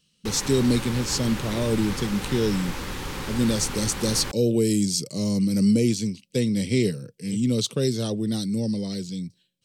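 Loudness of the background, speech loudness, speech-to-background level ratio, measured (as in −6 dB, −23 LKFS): −33.0 LKFS, −24.5 LKFS, 8.5 dB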